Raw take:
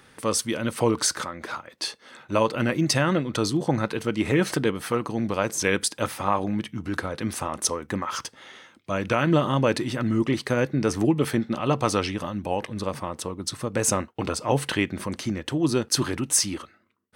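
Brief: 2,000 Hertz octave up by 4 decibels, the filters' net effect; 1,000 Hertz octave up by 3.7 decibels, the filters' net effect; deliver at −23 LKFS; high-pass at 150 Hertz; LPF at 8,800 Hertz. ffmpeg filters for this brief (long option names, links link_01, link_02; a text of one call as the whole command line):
ffmpeg -i in.wav -af "highpass=150,lowpass=8800,equalizer=frequency=1000:width_type=o:gain=3.5,equalizer=frequency=2000:width_type=o:gain=4,volume=2dB" out.wav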